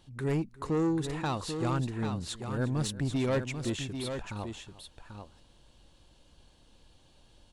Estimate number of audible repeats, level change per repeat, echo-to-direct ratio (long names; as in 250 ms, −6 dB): 2, repeats not evenly spaced, −7.0 dB